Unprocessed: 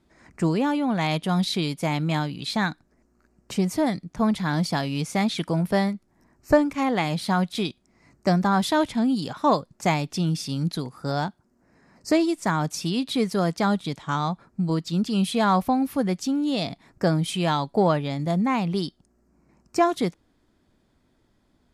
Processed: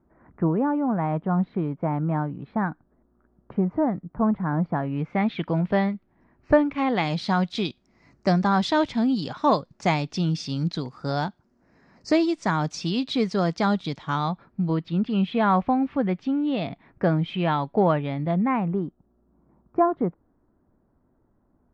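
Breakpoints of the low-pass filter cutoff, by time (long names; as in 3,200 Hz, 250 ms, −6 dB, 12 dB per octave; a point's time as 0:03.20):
low-pass filter 24 dB per octave
0:04.69 1,400 Hz
0:05.48 3,200 Hz
0:06.69 3,200 Hz
0:07.10 5,800 Hz
0:13.89 5,800 Hz
0:14.94 2,900 Hz
0:18.36 2,900 Hz
0:18.86 1,300 Hz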